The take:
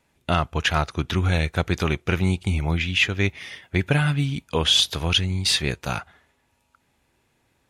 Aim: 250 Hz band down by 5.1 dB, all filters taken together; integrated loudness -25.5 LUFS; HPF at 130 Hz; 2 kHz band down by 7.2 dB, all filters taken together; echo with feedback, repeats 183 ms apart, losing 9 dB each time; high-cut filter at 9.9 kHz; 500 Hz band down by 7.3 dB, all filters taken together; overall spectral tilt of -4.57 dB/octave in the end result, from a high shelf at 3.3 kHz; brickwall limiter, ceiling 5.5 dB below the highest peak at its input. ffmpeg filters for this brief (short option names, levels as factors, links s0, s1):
-af "highpass=130,lowpass=9900,equalizer=f=250:t=o:g=-5,equalizer=f=500:t=o:g=-7.5,equalizer=f=2000:t=o:g=-6,highshelf=f=3300:g=-8.5,alimiter=limit=0.15:level=0:latency=1,aecho=1:1:183|366|549|732:0.355|0.124|0.0435|0.0152,volume=1.5"